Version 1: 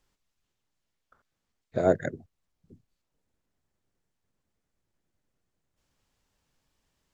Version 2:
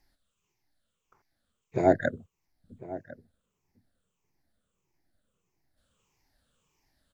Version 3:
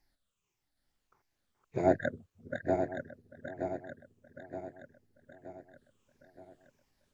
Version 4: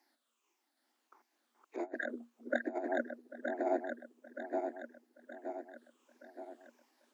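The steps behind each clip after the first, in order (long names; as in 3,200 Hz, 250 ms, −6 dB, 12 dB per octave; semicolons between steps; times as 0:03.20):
rippled gain that drifts along the octave scale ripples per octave 0.75, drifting −1.6 Hz, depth 14 dB; slap from a distant wall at 180 metres, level −16 dB
feedback delay that plays each chunk backwards 461 ms, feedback 70%, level −4.5 dB; level −5 dB
compressor whose output falls as the input rises −35 dBFS, ratio −0.5; Chebyshev high-pass with heavy ripple 230 Hz, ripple 6 dB; level +5 dB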